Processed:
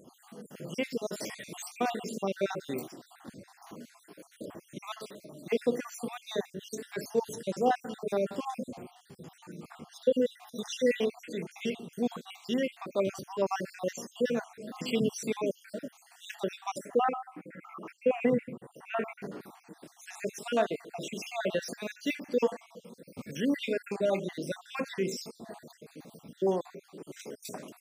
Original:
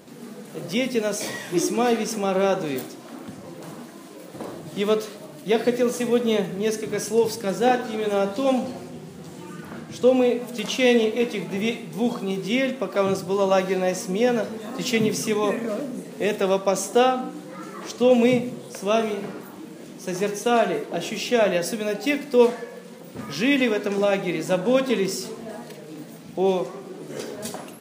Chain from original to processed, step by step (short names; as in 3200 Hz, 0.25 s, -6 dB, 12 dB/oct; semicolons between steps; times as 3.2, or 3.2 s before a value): random spectral dropouts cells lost 57%; 16.78–19.22 EQ curve 680 Hz 0 dB, 2400 Hz +6 dB, 3700 Hz -25 dB, 9600 Hz -10 dB; gain -6.5 dB